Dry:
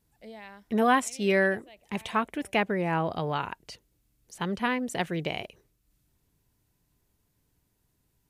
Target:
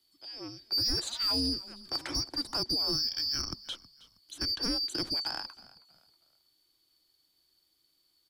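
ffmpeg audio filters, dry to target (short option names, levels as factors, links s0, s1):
-filter_complex "[0:a]afftfilt=real='real(if(lt(b,272),68*(eq(floor(b/68),0)*1+eq(floor(b/68),1)*2+eq(floor(b/68),2)*3+eq(floor(b/68),3)*0)+mod(b,68),b),0)':imag='imag(if(lt(b,272),68*(eq(floor(b/68),0)*1+eq(floor(b/68),1)*2+eq(floor(b/68),2)*3+eq(floor(b/68),3)*0)+mod(b,68),b),0)':win_size=2048:overlap=0.75,superequalizer=6b=3.16:13b=2.51,acrossover=split=120[s0][s1];[s0]acontrast=49[s2];[s1]alimiter=limit=0.141:level=0:latency=1:release=73[s3];[s2][s3]amix=inputs=2:normalize=0,acrossover=split=280|1700|7100[s4][s5][s6][s7];[s4]acompressor=threshold=0.0251:ratio=4[s8];[s5]acompressor=threshold=0.0158:ratio=4[s9];[s7]acompressor=threshold=0.00251:ratio=4[s10];[s8][s9][s6][s10]amix=inputs=4:normalize=0,asoftclip=type=tanh:threshold=0.0708,asplit=2[s11][s12];[s12]asplit=3[s13][s14][s15];[s13]adelay=319,afreqshift=-57,volume=0.1[s16];[s14]adelay=638,afreqshift=-114,volume=0.0339[s17];[s15]adelay=957,afreqshift=-171,volume=0.0116[s18];[s16][s17][s18]amix=inputs=3:normalize=0[s19];[s11][s19]amix=inputs=2:normalize=0"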